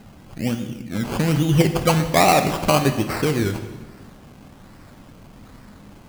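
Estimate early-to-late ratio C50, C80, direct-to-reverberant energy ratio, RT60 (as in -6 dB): 9.0 dB, 11.0 dB, 7.0 dB, 1.3 s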